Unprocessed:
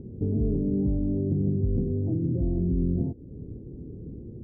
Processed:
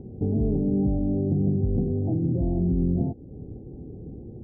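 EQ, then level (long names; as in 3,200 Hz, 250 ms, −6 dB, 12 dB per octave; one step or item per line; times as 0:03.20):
dynamic equaliser 180 Hz, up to +3 dB, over −37 dBFS, Q 1.3
low-pass with resonance 780 Hz, resonance Q 7
high-frequency loss of the air 410 metres
0.0 dB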